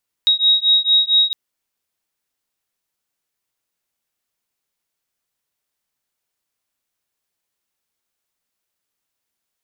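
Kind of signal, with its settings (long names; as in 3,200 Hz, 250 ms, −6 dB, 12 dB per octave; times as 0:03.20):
two tones that beat 3,790 Hz, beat 4.4 Hz, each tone −15 dBFS 1.06 s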